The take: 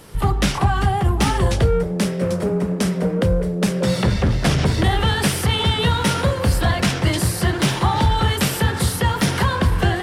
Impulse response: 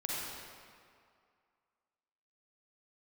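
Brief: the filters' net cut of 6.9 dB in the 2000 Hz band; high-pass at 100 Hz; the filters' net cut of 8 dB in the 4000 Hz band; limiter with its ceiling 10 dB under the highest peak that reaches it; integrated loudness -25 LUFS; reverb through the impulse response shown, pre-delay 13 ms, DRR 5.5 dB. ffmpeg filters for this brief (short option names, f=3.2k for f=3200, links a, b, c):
-filter_complex "[0:a]highpass=100,equalizer=f=2k:t=o:g=-7,equalizer=f=4k:t=o:g=-8,alimiter=limit=-16.5dB:level=0:latency=1,asplit=2[a][b];[1:a]atrim=start_sample=2205,adelay=13[c];[b][c]afir=irnorm=-1:irlink=0,volume=-10dB[d];[a][d]amix=inputs=2:normalize=0,volume=-0.5dB"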